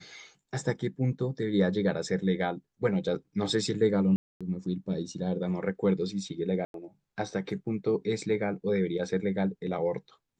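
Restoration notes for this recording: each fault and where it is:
0:04.16–0:04.41: drop-out 246 ms
0:06.65–0:06.74: drop-out 92 ms

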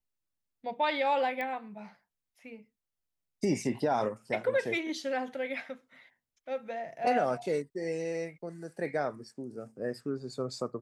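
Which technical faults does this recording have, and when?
0:01.41: click −23 dBFS

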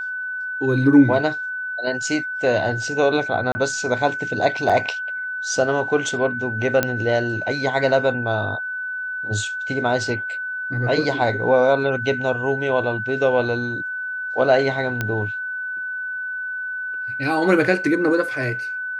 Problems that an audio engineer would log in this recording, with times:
whistle 1,500 Hz −25 dBFS
0:03.52–0:03.55: drop-out 30 ms
0:04.69–0:04.70: drop-out 6.2 ms
0:06.83: click −4 dBFS
0:15.01: click −9 dBFS

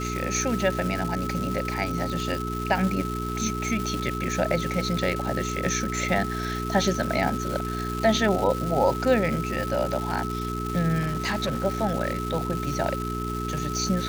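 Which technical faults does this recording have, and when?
surface crackle 560 per second −29 dBFS
mains hum 60 Hz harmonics 7 −31 dBFS
whistle 1,300 Hz −32 dBFS
0:10.99–0:11.65: clipping −22 dBFS

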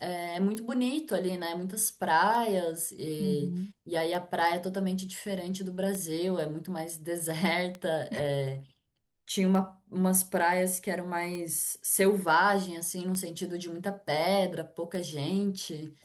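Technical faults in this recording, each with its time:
scratch tick 33 1/3 rpm −23 dBFS

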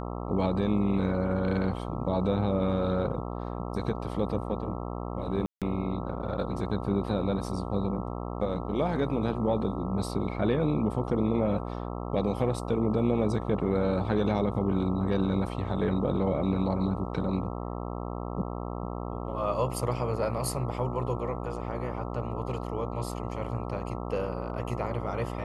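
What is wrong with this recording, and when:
mains buzz 60 Hz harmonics 22 −35 dBFS
0:05.46–0:05.62: drop-out 157 ms

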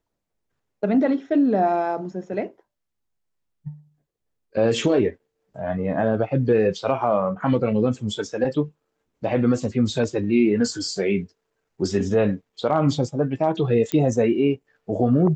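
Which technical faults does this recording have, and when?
0:13.92: click −10 dBFS

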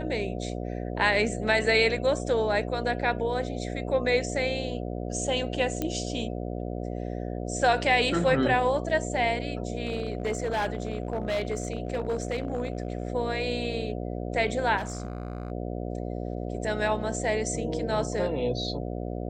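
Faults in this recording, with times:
mains buzz 60 Hz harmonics 12 −33 dBFS
0:05.82: click −15 dBFS
0:09.83–0:13.10: clipping −23.5 dBFS
0:14.77–0:15.52: clipping −28.5 dBFS

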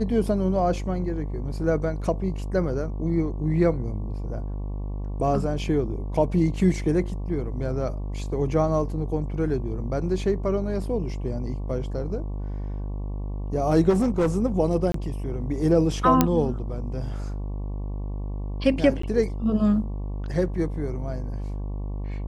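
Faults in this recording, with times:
mains buzz 50 Hz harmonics 23 −30 dBFS
0:13.89–0:14.30: clipping −17.5 dBFS
0:14.92–0:14.94: drop-out 23 ms
0:16.21: click −3 dBFS
0:19.02–0:19.03: drop-out 14 ms

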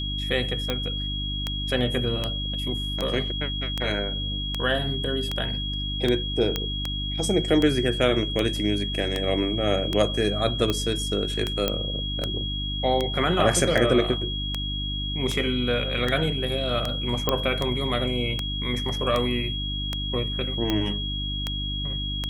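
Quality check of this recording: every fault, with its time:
mains hum 50 Hz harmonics 6 −31 dBFS
scratch tick 78 rpm −11 dBFS
whistle 3,300 Hz −30 dBFS
0:06.56: click −10 dBFS
0:11.68: click −8 dBFS
0:17.29: click −7 dBFS

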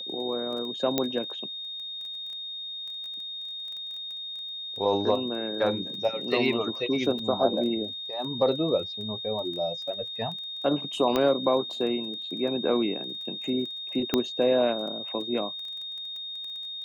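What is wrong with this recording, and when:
surface crackle 14 per second −36 dBFS
whistle 3,700 Hz −34 dBFS
0:00.98: click −9 dBFS
0:07.19: drop-out 2.8 ms
0:11.16: click −12 dBFS
0:14.14: click −9 dBFS

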